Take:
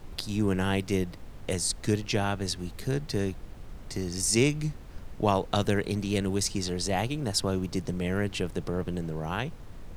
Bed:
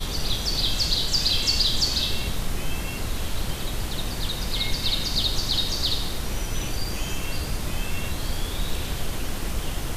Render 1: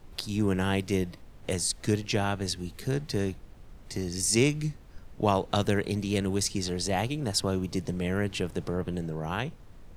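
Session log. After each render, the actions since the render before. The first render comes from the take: noise print and reduce 6 dB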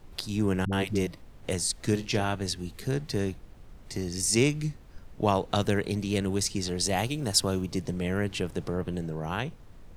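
0.65–1.07 s: phase dispersion highs, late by 75 ms, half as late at 350 Hz; 1.82–2.35 s: doubling 43 ms -12.5 dB; 6.80–7.62 s: treble shelf 4.3 kHz +7 dB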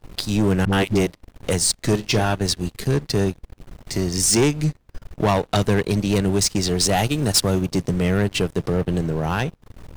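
transient shaper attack -1 dB, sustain -7 dB; waveshaping leveller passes 3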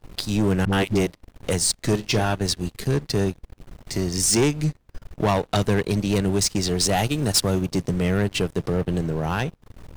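trim -2 dB

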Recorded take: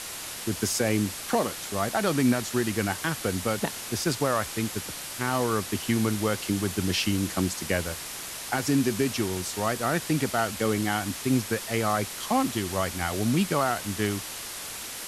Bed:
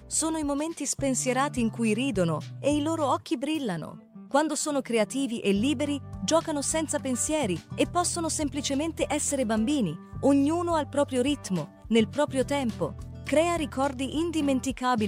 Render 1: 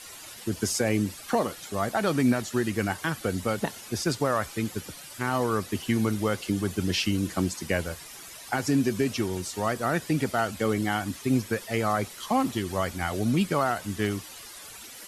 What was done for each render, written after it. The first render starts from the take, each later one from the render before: noise reduction 12 dB, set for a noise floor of -38 dBFS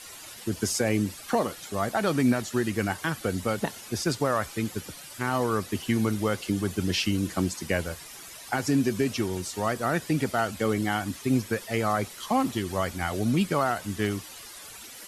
no audible change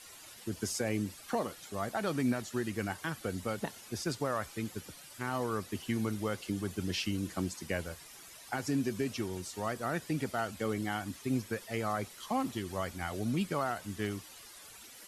trim -8 dB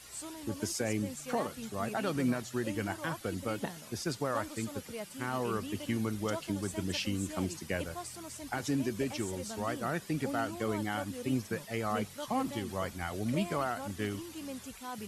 add bed -17 dB

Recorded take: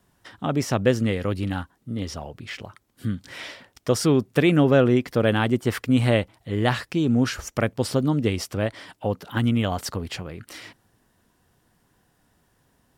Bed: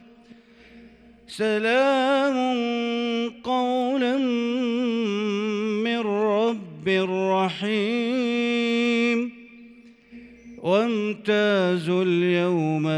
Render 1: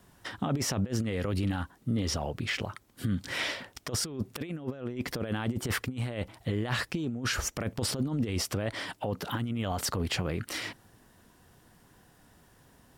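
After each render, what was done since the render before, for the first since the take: compressor with a negative ratio -26 dBFS, ratio -0.5; peak limiter -20.5 dBFS, peak gain reduction 11.5 dB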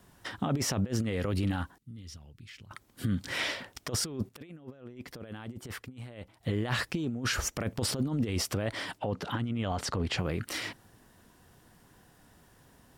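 1.78–2.71 s: amplifier tone stack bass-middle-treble 6-0-2; 4.29–6.43 s: gain -10.5 dB; 8.98–10.18 s: distance through air 60 m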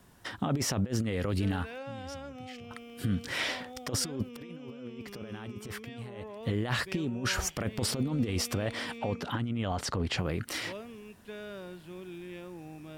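add bed -22.5 dB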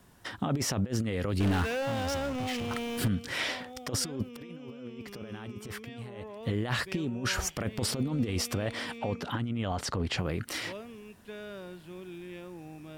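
1.40–3.08 s: power-law waveshaper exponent 0.5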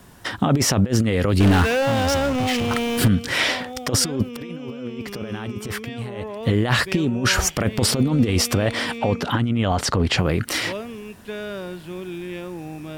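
trim +11.5 dB

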